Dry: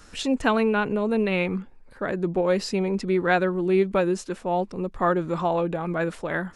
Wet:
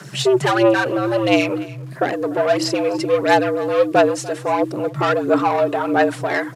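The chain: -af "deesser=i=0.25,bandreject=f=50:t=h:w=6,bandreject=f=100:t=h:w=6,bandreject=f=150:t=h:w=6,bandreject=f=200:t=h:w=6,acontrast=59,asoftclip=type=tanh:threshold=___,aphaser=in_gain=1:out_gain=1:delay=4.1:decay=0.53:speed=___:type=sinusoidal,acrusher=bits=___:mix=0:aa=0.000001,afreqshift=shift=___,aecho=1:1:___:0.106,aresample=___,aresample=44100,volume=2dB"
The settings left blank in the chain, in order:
-16.5dB, 1.5, 8, 120, 293, 32000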